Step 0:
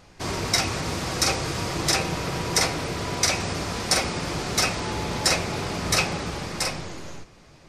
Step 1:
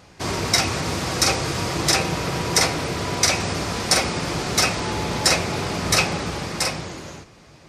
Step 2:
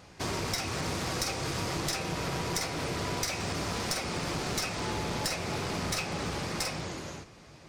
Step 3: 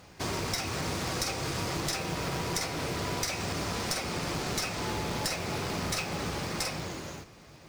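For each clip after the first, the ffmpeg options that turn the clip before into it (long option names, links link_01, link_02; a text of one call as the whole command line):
ffmpeg -i in.wav -af "highpass=54,volume=3.5dB" out.wav
ffmpeg -i in.wav -af "acompressor=threshold=-24dB:ratio=6,aeval=exprs='clip(val(0),-1,0.0473)':channel_layout=same,volume=-4dB" out.wav
ffmpeg -i in.wav -af "acrusher=bits=4:mode=log:mix=0:aa=0.000001" out.wav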